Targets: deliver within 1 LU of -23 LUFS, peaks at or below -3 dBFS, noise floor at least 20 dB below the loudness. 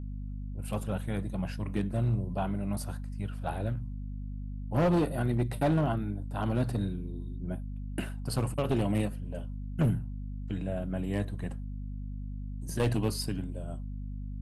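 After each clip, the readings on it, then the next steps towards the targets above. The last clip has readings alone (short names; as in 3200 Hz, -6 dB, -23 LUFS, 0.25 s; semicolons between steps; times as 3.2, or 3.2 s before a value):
clipped 0.9%; flat tops at -21.0 dBFS; hum 50 Hz; harmonics up to 250 Hz; hum level -35 dBFS; loudness -33.0 LUFS; peak -21.0 dBFS; loudness target -23.0 LUFS
-> clip repair -21 dBFS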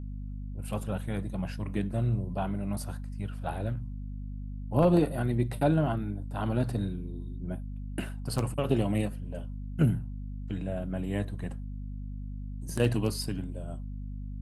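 clipped 0.0%; hum 50 Hz; harmonics up to 250 Hz; hum level -35 dBFS
-> de-hum 50 Hz, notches 5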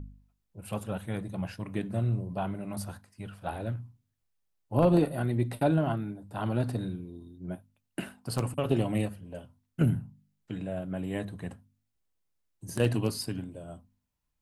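hum none; loudness -31.5 LUFS; peak -12.0 dBFS; loudness target -23.0 LUFS
-> gain +8.5 dB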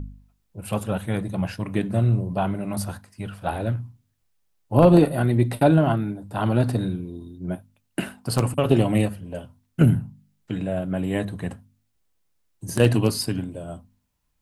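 loudness -23.0 LUFS; peak -3.5 dBFS; noise floor -71 dBFS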